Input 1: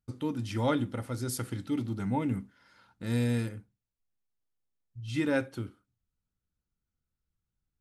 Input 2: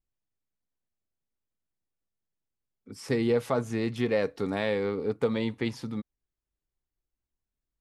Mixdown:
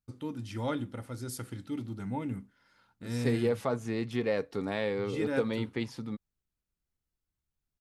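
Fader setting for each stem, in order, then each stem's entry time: -5.0, -3.5 dB; 0.00, 0.15 s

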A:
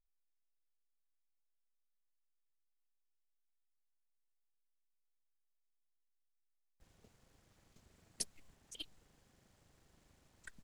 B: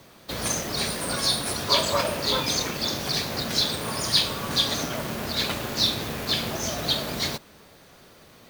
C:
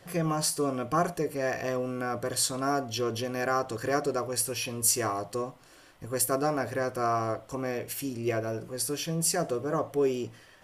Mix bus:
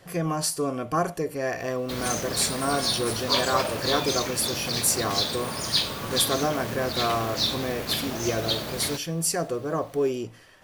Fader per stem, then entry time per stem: off, -2.5 dB, +1.5 dB; off, 1.60 s, 0.00 s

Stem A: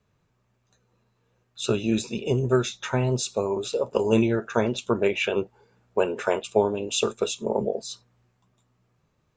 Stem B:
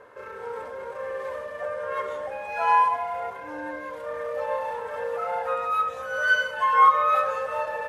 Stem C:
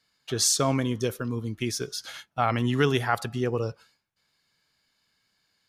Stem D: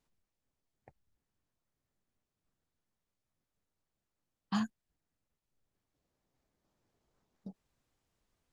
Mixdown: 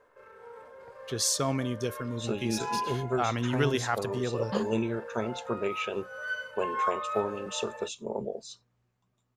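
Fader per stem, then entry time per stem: -8.5, -13.0, -4.5, +0.5 dB; 0.60, 0.00, 0.80, 0.00 s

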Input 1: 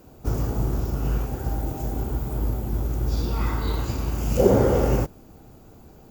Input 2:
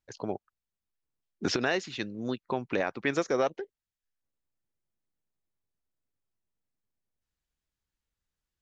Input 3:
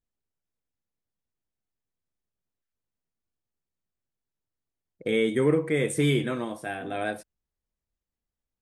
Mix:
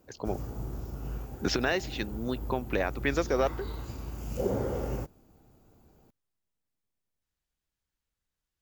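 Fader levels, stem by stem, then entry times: -12.5 dB, 0.0 dB, off; 0.00 s, 0.00 s, off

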